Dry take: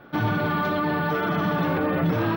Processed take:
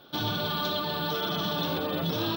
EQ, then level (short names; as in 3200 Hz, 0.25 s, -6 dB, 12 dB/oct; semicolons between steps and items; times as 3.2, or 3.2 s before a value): tone controls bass -3 dB, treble +4 dB; resonant high shelf 2700 Hz +9 dB, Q 3; notches 60/120/180/240/300 Hz; -5.0 dB